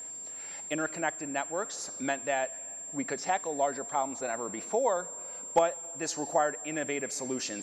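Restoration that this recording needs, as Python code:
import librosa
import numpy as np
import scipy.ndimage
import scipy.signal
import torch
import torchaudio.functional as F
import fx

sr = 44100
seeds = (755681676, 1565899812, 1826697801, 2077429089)

y = fx.fix_declip(x, sr, threshold_db=-14.0)
y = fx.fix_declick_ar(y, sr, threshold=6.5)
y = fx.notch(y, sr, hz=7400.0, q=30.0)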